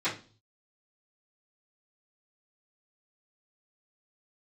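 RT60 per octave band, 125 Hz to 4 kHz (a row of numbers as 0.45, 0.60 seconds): 0.80, 0.50, 0.40, 0.35, 0.30, 0.40 seconds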